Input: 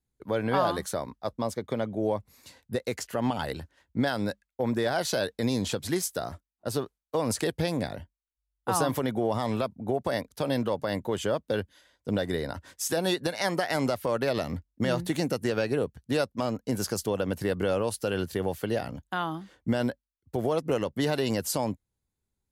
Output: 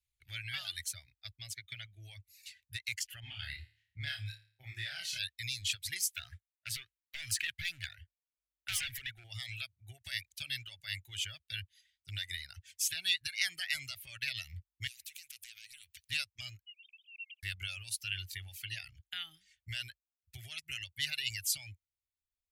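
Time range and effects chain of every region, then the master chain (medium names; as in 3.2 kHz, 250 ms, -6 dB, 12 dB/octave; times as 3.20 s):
3.20–5.19 s: treble shelf 3.2 kHz -12 dB + doubling 37 ms -8 dB + flutter echo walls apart 4.8 m, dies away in 0.49 s
6.12–9.24 s: peaking EQ 1.6 kHz +10.5 dB 0.65 oct + overload inside the chain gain 24.5 dB
14.87–16.10 s: compression 3:1, threshold -41 dBFS + spectrum-flattening compressor 4:1
16.66–17.43 s: formants replaced by sine waves + steep high-pass 2.5 kHz 72 dB/octave + distance through air 130 m
whole clip: reverb removal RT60 1.3 s; elliptic band-stop 100–2300 Hz, stop band 40 dB; tone controls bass -12 dB, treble -7 dB; trim +6 dB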